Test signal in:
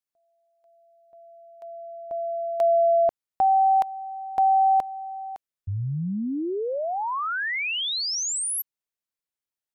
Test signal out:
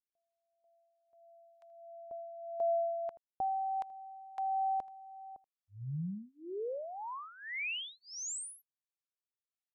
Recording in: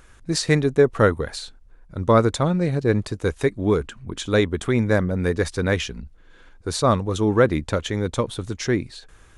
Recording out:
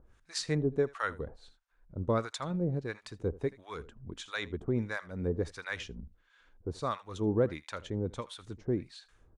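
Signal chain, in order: echo 80 ms -20 dB; harmonic tremolo 1.5 Hz, depth 100%, crossover 850 Hz; Bessel low-pass 7300 Hz, order 2; gain -8.5 dB

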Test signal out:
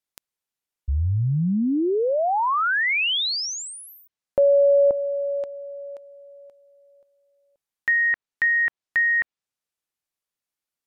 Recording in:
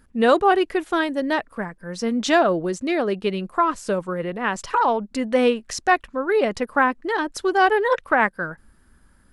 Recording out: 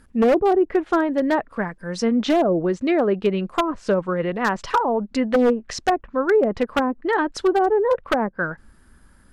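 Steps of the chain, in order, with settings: treble ducked by the level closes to 550 Hz, closed at -15 dBFS; wavefolder -14 dBFS; gain +3.5 dB

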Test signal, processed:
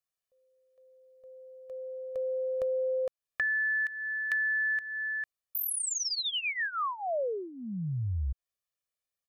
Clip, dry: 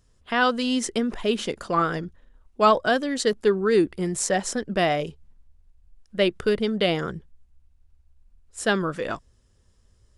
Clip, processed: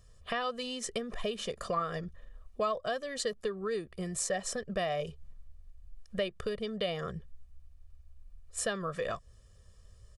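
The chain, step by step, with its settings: compressor 5:1, threshold -34 dBFS; comb 1.7 ms, depth 75%

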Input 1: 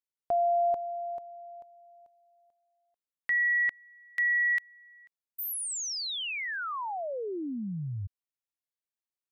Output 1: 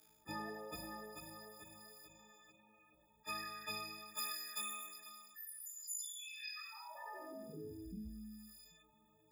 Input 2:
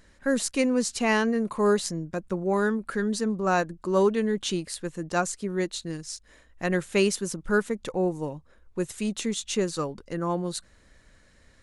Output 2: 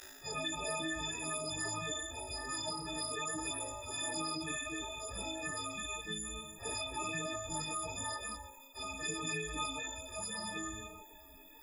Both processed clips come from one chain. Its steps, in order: frequency quantiser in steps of 6 st; HPF 78 Hz 12 dB/oct; low shelf 490 Hz +2.5 dB; flutter echo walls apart 3.2 m, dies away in 0.84 s; spectral gate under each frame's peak -25 dB weak; chorus voices 6, 0.5 Hz, delay 13 ms, depth 2.7 ms; fast leveller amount 50%; gain +5 dB

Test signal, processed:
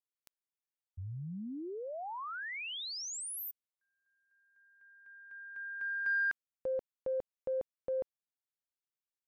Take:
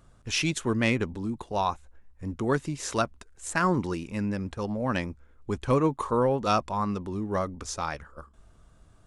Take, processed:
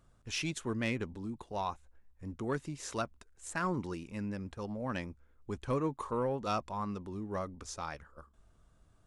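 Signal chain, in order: soft clip -12 dBFS; gain -8.5 dB

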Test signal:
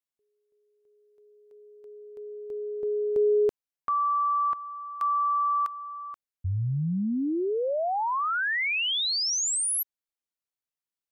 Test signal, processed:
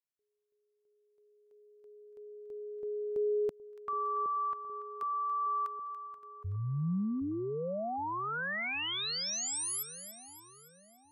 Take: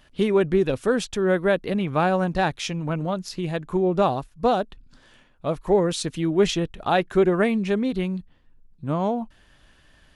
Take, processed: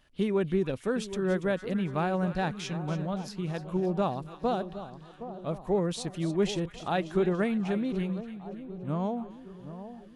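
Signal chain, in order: dynamic EQ 180 Hz, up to +5 dB, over -36 dBFS, Q 1.6; on a send: split-band echo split 1100 Hz, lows 0.767 s, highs 0.285 s, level -12 dB; on the sum: gain -9 dB

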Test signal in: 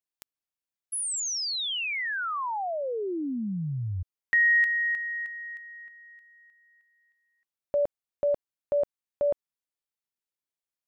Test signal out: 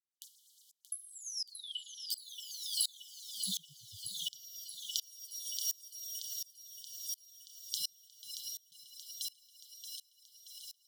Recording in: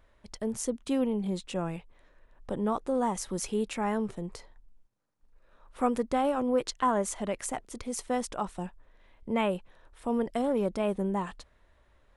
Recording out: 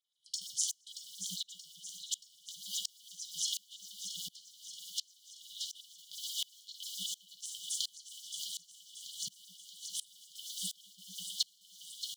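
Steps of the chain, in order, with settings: recorder AGC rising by 17 dB/s, up to +21 dB; treble ducked by the level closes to 1100 Hz, closed at -22.5 dBFS; low shelf 100 Hz -10.5 dB; in parallel at -9 dB: sample gate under -29.5 dBFS; on the sum: two-slope reverb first 0.3 s, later 2 s, from -17 dB, DRR 2 dB; LFO high-pass sine 8.8 Hz 610–7100 Hz; brick-wall FIR band-stop 180–2900 Hz; on a send: thinning echo 0.628 s, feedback 77%, high-pass 740 Hz, level -6 dB; on the sum: dB-ramp tremolo swelling 1.4 Hz, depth 27 dB; gain +12 dB

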